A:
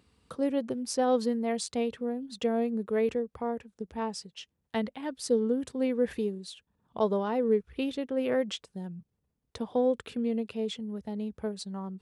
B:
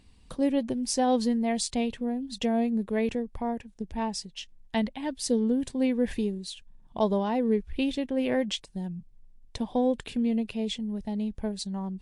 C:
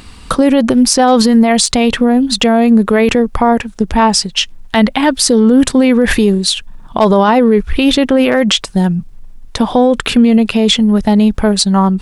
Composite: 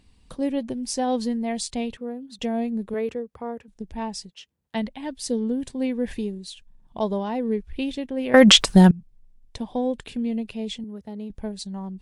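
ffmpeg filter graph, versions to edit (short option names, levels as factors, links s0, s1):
-filter_complex "[0:a]asplit=4[s0][s1][s2][s3];[1:a]asplit=6[s4][s5][s6][s7][s8][s9];[s4]atrim=end=1.972[s10];[s0]atrim=start=1.968:end=2.392[s11];[s5]atrim=start=2.388:end=2.942[s12];[s1]atrim=start=2.938:end=3.682[s13];[s6]atrim=start=3.678:end=4.302[s14];[s2]atrim=start=4.298:end=4.752[s15];[s7]atrim=start=4.748:end=8.342[s16];[2:a]atrim=start=8.338:end=8.912[s17];[s8]atrim=start=8.908:end=10.842[s18];[s3]atrim=start=10.838:end=11.302[s19];[s9]atrim=start=11.298[s20];[s10][s11]acrossfade=d=0.004:c1=hsin:c2=hsin[s21];[s21][s12]acrossfade=d=0.004:c1=hsin:c2=hsin[s22];[s22][s13]acrossfade=d=0.004:c1=hsin:c2=hsin[s23];[s23][s14]acrossfade=d=0.004:c1=hsin:c2=hsin[s24];[s24][s15]acrossfade=d=0.004:c1=hsin:c2=hsin[s25];[s25][s16]acrossfade=d=0.004:c1=hsin:c2=hsin[s26];[s26][s17]acrossfade=d=0.004:c1=hsin:c2=hsin[s27];[s27][s18]acrossfade=d=0.004:c1=hsin:c2=hsin[s28];[s28][s19]acrossfade=d=0.004:c1=hsin:c2=hsin[s29];[s29][s20]acrossfade=d=0.004:c1=hsin:c2=hsin"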